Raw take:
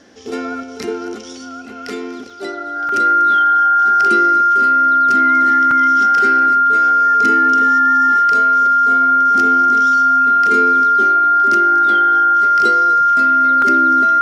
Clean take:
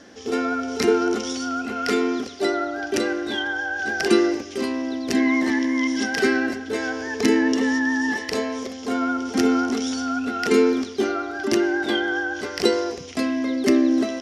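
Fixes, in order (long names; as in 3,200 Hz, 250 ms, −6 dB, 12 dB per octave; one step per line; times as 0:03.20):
notch filter 1,400 Hz, Q 30
repair the gap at 0:02.30/0:02.89/0:05.71/0:13.62, 2.9 ms
echo removal 242 ms −17.5 dB
level 0 dB, from 0:00.63 +4.5 dB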